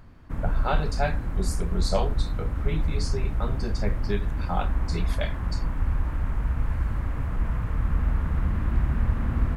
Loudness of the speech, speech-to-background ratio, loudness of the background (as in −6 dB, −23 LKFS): −33.0 LKFS, −4.0 dB, −29.0 LKFS